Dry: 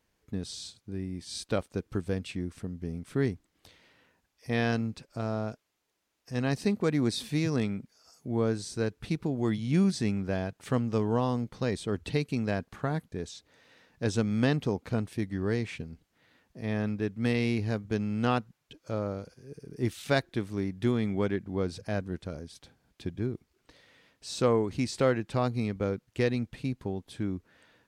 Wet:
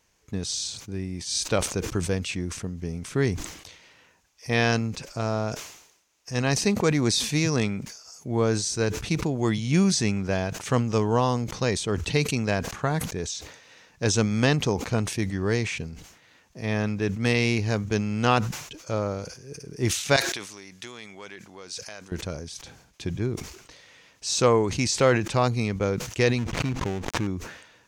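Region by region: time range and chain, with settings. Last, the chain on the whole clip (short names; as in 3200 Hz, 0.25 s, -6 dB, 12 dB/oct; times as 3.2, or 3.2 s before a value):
20.16–22.12 HPF 950 Hz 6 dB/oct + compressor 2.5:1, threshold -49 dBFS + bell 6700 Hz +5 dB 2.8 oct
26.38–27.27 switching dead time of 0.26 ms + LPF 2300 Hz 6 dB/oct + backwards sustainer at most 49 dB/s
whole clip: fifteen-band EQ 250 Hz -4 dB, 1000 Hz +3 dB, 2500 Hz +4 dB, 6300 Hz +11 dB; sustainer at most 75 dB/s; gain +5 dB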